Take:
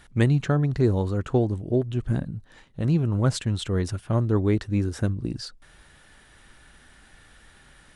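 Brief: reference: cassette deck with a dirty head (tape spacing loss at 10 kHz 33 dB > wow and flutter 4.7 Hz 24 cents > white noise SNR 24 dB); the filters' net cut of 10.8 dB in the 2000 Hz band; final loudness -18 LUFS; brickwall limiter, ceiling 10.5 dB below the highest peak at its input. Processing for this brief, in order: bell 2000 Hz -6.5 dB; limiter -18.5 dBFS; tape spacing loss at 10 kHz 33 dB; wow and flutter 4.7 Hz 24 cents; white noise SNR 24 dB; gain +11.5 dB

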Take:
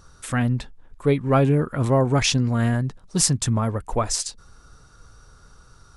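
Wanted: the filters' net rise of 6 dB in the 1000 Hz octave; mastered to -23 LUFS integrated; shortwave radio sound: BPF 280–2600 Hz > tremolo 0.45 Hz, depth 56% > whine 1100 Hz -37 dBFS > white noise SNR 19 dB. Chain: BPF 280–2600 Hz; bell 1000 Hz +8 dB; tremolo 0.45 Hz, depth 56%; whine 1100 Hz -37 dBFS; white noise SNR 19 dB; gain +3.5 dB

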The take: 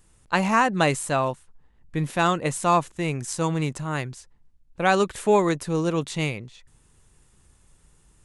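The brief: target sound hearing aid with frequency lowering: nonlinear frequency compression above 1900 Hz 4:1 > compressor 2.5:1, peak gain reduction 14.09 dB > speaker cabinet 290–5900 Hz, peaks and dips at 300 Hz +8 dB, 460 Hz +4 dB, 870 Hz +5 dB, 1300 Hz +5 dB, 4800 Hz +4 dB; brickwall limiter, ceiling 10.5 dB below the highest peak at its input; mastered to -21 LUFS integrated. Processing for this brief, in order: limiter -17.5 dBFS; nonlinear frequency compression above 1900 Hz 4:1; compressor 2.5:1, threshold -43 dBFS; speaker cabinet 290–5900 Hz, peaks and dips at 300 Hz +8 dB, 460 Hz +4 dB, 870 Hz +5 dB, 1300 Hz +5 dB, 4800 Hz +4 dB; gain +18 dB

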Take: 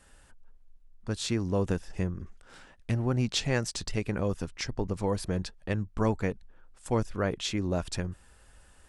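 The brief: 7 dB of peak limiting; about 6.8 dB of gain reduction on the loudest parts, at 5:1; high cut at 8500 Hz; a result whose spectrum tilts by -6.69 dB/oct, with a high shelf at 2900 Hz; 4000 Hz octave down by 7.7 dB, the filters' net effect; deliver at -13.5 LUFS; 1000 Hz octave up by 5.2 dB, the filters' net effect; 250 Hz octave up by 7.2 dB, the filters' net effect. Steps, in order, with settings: LPF 8500 Hz; bell 250 Hz +9 dB; bell 1000 Hz +6.5 dB; high shelf 2900 Hz -3.5 dB; bell 4000 Hz -7 dB; compressor 5:1, threshold -25 dBFS; gain +21 dB; limiter -1.5 dBFS

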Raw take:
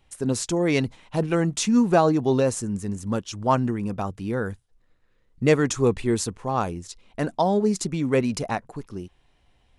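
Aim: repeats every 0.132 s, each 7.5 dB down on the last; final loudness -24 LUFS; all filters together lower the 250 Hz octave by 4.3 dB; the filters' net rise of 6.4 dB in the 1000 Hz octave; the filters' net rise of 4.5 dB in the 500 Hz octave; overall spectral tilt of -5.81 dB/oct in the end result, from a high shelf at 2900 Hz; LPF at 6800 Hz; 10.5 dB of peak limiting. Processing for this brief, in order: LPF 6800 Hz; bell 250 Hz -8 dB; bell 500 Hz +6 dB; bell 1000 Hz +7 dB; high shelf 2900 Hz -4 dB; limiter -11.5 dBFS; feedback echo 0.132 s, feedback 42%, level -7.5 dB

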